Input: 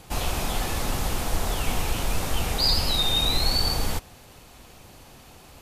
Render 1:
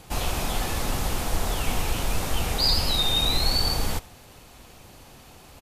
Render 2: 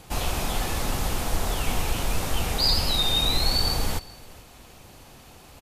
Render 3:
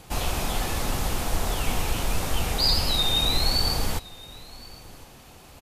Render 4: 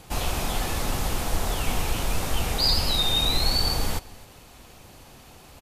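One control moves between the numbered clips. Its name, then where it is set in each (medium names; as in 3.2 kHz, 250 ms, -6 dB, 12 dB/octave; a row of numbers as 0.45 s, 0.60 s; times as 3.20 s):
delay, time: 75 ms, 422 ms, 1065 ms, 258 ms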